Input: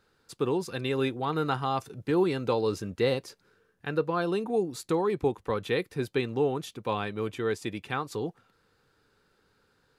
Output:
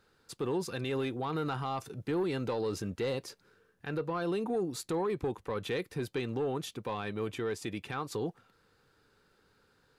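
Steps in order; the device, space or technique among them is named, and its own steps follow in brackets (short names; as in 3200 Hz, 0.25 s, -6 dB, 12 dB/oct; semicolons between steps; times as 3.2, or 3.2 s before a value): soft clipper into limiter (soft clip -19 dBFS, distortion -19 dB; limiter -26 dBFS, peak gain reduction 6.5 dB)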